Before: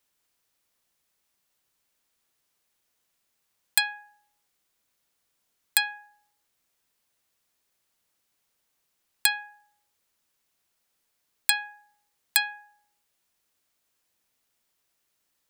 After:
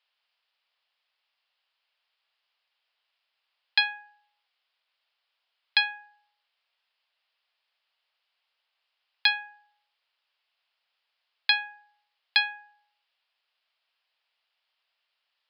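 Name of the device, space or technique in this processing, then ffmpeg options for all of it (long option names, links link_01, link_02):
musical greeting card: -af "aresample=11025,aresample=44100,highpass=frequency=620:width=0.5412,highpass=frequency=620:width=1.3066,equalizer=frequency=2900:width_type=o:width=0.6:gain=6.5"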